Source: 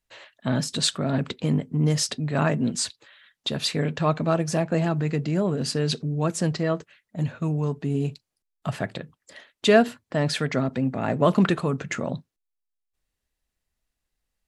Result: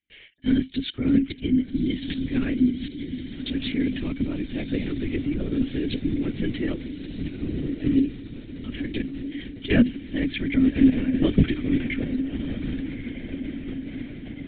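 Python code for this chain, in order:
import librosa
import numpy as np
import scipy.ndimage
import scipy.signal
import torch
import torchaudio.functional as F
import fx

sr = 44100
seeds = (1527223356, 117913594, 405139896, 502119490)

p1 = fx.low_shelf(x, sr, hz=62.0, db=10.5)
p2 = fx.level_steps(p1, sr, step_db=17)
p3 = p1 + (p2 * 10.0 ** (-1.0 / 20.0))
p4 = fx.leveller(p3, sr, passes=1, at=(5.91, 6.72))
p5 = fx.over_compress(p4, sr, threshold_db=-26.0, ratio=-0.5, at=(8.73, 9.69), fade=0.02)
p6 = fx.vowel_filter(p5, sr, vowel='i')
p7 = p6 + fx.echo_diffused(p6, sr, ms=1214, feedback_pct=62, wet_db=-9.5, dry=0)
p8 = fx.lpc_vocoder(p7, sr, seeds[0], excitation='whisper', order=16)
y = p8 * 10.0 ** (8.0 / 20.0)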